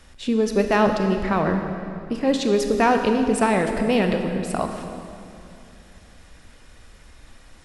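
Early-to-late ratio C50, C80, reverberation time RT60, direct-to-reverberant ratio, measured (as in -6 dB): 6.0 dB, 6.5 dB, 2.7 s, 5.0 dB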